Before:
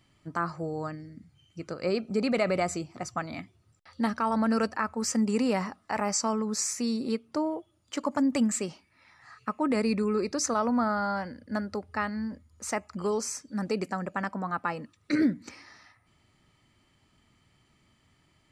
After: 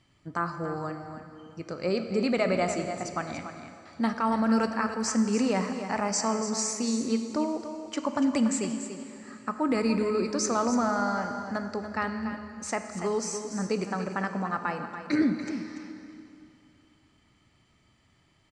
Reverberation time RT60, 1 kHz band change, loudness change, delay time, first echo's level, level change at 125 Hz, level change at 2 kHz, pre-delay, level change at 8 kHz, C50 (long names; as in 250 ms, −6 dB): 2.8 s, +1.0 dB, +1.0 dB, 288 ms, −10.0 dB, +1.0 dB, +1.0 dB, 7 ms, +0.5 dB, 6.0 dB